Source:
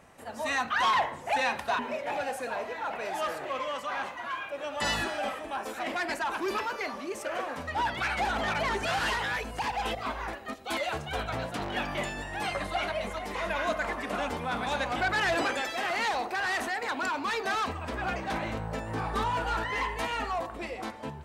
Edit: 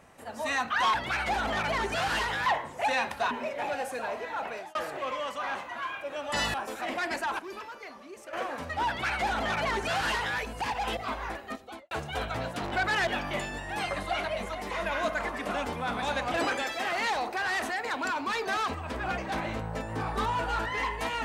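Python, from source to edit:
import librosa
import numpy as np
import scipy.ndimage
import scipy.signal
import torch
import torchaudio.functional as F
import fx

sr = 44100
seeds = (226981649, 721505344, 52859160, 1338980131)

y = fx.studio_fade_out(x, sr, start_s=10.49, length_s=0.4)
y = fx.edit(y, sr, fx.fade_out_span(start_s=2.96, length_s=0.27),
    fx.cut(start_s=5.02, length_s=0.5),
    fx.clip_gain(start_s=6.37, length_s=0.94, db=-10.0),
    fx.duplicate(start_s=7.85, length_s=1.52, to_s=0.94),
    fx.move(start_s=14.98, length_s=0.34, to_s=11.71), tone=tone)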